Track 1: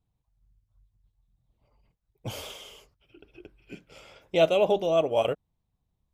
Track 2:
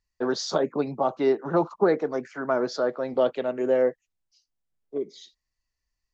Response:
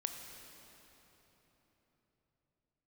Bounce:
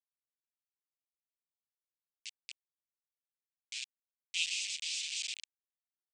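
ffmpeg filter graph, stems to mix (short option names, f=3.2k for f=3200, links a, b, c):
-filter_complex "[0:a]afwtdn=0.02,volume=-4dB,asplit=3[a][b][c];[b]volume=-3.5dB[d];[1:a]flanger=delay=9.7:depth=9.3:regen=19:speed=1.1:shape=sinusoidal,alimiter=limit=-19dB:level=0:latency=1,volume=-7dB,asplit=2[e][f];[f]volume=-18.5dB[g];[c]apad=whole_len=270728[h];[e][h]sidechaingate=range=-33dB:threshold=-57dB:ratio=16:detection=peak[i];[2:a]atrim=start_sample=2205[j];[d][g]amix=inputs=2:normalize=0[k];[k][j]afir=irnorm=-1:irlink=0[l];[a][i][l]amix=inputs=3:normalize=0,acrusher=bits=4:mix=0:aa=0.000001,asuperpass=centerf=4600:order=12:qfactor=0.77"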